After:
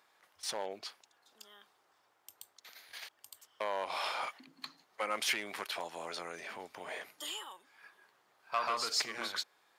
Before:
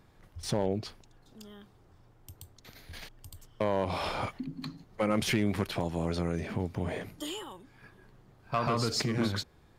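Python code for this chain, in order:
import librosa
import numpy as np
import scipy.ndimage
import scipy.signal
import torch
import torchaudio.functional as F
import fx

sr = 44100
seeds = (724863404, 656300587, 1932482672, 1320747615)

y = scipy.signal.sosfilt(scipy.signal.butter(2, 860.0, 'highpass', fs=sr, output='sos'), x)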